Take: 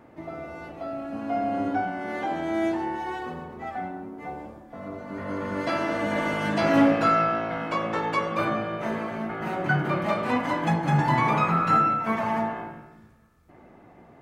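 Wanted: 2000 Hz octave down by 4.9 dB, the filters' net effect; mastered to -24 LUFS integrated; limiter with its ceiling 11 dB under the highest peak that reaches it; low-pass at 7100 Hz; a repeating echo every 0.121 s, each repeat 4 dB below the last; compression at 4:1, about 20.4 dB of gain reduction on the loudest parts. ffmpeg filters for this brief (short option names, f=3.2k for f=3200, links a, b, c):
-af "lowpass=7.1k,equalizer=f=2k:t=o:g=-6.5,acompressor=threshold=-41dB:ratio=4,alimiter=level_in=14.5dB:limit=-24dB:level=0:latency=1,volume=-14.5dB,aecho=1:1:121|242|363|484|605|726|847|968|1089:0.631|0.398|0.25|0.158|0.0994|0.0626|0.0394|0.0249|0.0157,volume=21dB"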